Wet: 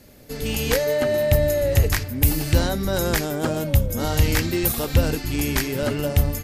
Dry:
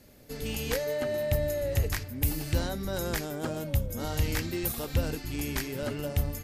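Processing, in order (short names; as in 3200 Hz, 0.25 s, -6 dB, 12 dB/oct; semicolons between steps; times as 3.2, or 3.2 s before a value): AGC gain up to 3 dB; gain +6.5 dB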